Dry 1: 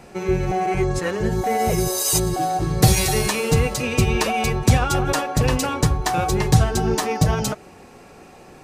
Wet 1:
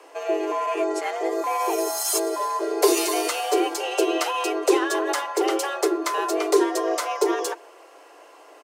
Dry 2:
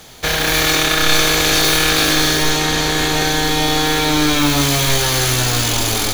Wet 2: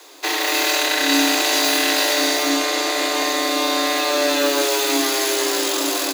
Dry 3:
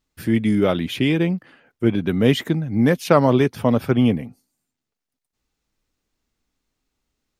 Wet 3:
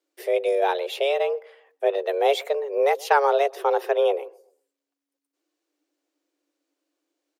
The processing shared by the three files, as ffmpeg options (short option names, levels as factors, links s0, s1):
-filter_complex "[0:a]asplit=2[s0][s1];[s1]adelay=128,lowpass=f=890:p=1,volume=0.0708,asplit=2[s2][s3];[s3]adelay=128,lowpass=f=890:p=1,volume=0.39,asplit=2[s4][s5];[s5]adelay=128,lowpass=f=890:p=1,volume=0.39[s6];[s0][s2][s4][s6]amix=inputs=4:normalize=0,afreqshift=280,volume=0.631"